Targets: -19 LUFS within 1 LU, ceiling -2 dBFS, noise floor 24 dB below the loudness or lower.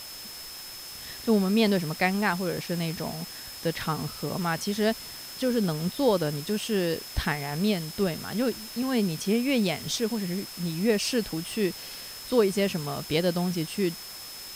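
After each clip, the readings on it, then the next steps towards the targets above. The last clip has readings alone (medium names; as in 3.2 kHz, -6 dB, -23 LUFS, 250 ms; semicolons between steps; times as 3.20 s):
steady tone 5.2 kHz; tone level -42 dBFS; noise floor -41 dBFS; noise floor target -52 dBFS; loudness -28.0 LUFS; peak level -10.0 dBFS; loudness target -19.0 LUFS
-> band-stop 5.2 kHz, Q 30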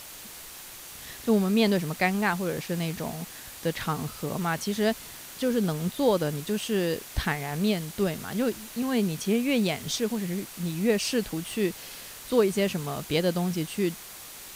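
steady tone not found; noise floor -44 dBFS; noise floor target -52 dBFS
-> noise reduction 8 dB, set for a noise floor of -44 dBFS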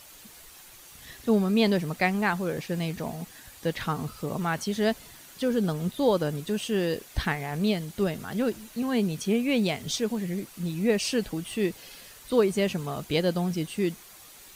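noise floor -50 dBFS; noise floor target -52 dBFS
-> noise reduction 6 dB, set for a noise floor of -50 dBFS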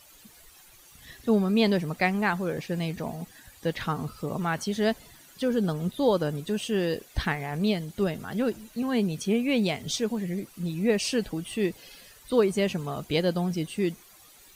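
noise floor -54 dBFS; loudness -28.0 LUFS; peak level -10.0 dBFS; loudness target -19.0 LUFS
-> trim +9 dB; peak limiter -2 dBFS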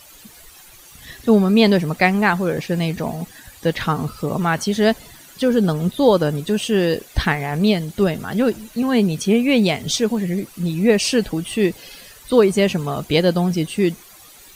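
loudness -19.0 LUFS; peak level -2.0 dBFS; noise floor -45 dBFS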